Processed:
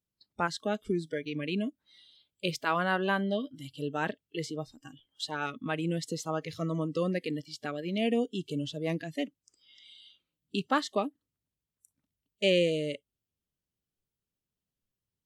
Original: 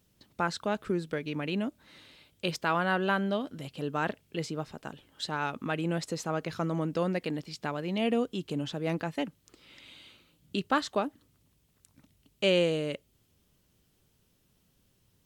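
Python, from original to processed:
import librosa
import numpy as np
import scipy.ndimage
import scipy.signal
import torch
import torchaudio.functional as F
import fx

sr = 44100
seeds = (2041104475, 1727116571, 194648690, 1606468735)

y = fx.noise_reduce_blind(x, sr, reduce_db=22)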